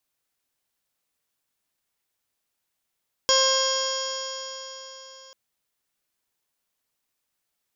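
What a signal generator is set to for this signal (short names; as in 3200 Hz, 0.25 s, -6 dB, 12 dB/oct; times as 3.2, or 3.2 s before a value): stretched partials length 2.04 s, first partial 529 Hz, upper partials -2.5/-7.5/-16/-17/-1/-18.5/-9.5/-2.5/0/-13.5/-3.5 dB, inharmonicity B 0.0011, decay 4.02 s, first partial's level -22 dB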